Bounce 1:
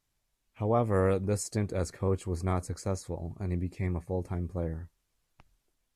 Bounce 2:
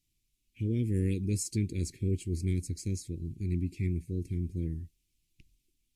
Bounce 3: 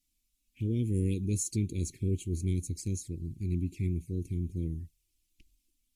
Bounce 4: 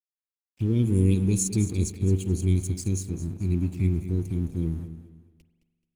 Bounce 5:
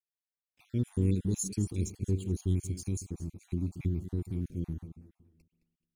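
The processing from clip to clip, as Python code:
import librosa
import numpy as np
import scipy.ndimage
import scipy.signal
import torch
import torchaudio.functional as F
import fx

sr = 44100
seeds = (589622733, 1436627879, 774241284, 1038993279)

y1 = scipy.signal.sosfilt(scipy.signal.ellip(3, 1.0, 50, [340.0, 2400.0], 'bandstop', fs=sr, output='sos'), x)
y1 = y1 * 10.0 ** (1.5 / 20.0)
y2 = fx.env_flanger(y1, sr, rest_ms=4.0, full_db=-30.5)
y2 = fx.high_shelf(y2, sr, hz=5400.0, db=7.0)
y3 = np.sign(y2) * np.maximum(np.abs(y2) - 10.0 ** (-55.0 / 20.0), 0.0)
y3 = fx.echo_feedback(y3, sr, ms=215, feedback_pct=31, wet_db=-12.5)
y3 = fx.rev_spring(y3, sr, rt60_s=1.6, pass_ms=(42,), chirp_ms=70, drr_db=12.5)
y3 = y3 * 10.0 ** (7.0 / 20.0)
y4 = fx.spec_dropout(y3, sr, seeds[0], share_pct=39)
y4 = y4 * 10.0 ** (-6.5 / 20.0)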